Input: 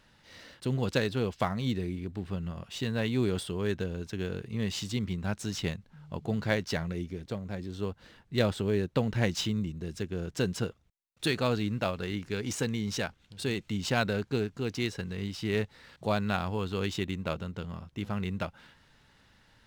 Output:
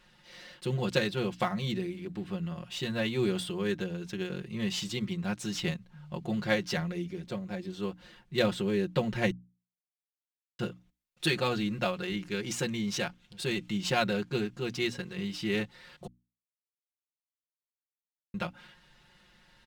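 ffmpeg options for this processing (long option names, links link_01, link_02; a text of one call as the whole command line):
ffmpeg -i in.wav -filter_complex "[0:a]asplit=5[link_01][link_02][link_03][link_04][link_05];[link_01]atrim=end=9.31,asetpts=PTS-STARTPTS,afade=type=out:start_time=9.306:duration=0.004:curve=hsin[link_06];[link_02]atrim=start=9.31:end=10.59,asetpts=PTS-STARTPTS,volume=0[link_07];[link_03]atrim=start=10.59:end=16.07,asetpts=PTS-STARTPTS,afade=type=in:duration=0.004:curve=hsin,afade=type=out:start_time=5.476:duration=0.004:curve=hsin[link_08];[link_04]atrim=start=16.07:end=18.34,asetpts=PTS-STARTPTS,volume=0[link_09];[link_05]atrim=start=18.34,asetpts=PTS-STARTPTS,afade=type=in:duration=0.004:curve=hsin[link_10];[link_06][link_07][link_08][link_09][link_10]concat=n=5:v=0:a=1,equalizer=frequency=2800:width=1.5:gain=3,bandreject=frequency=60:width_type=h:width=6,bandreject=frequency=120:width_type=h:width=6,bandreject=frequency=180:width_type=h:width=6,bandreject=frequency=240:width_type=h:width=6,bandreject=frequency=300:width_type=h:width=6,aecho=1:1:5.6:0.92,volume=-2.5dB" out.wav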